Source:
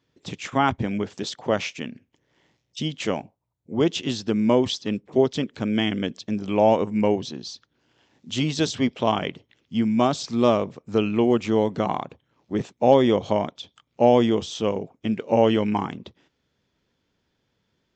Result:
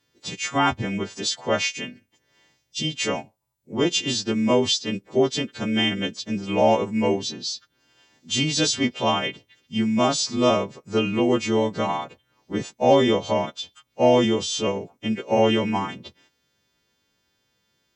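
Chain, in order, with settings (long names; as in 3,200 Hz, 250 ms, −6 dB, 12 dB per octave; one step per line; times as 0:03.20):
every partial snapped to a pitch grid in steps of 2 semitones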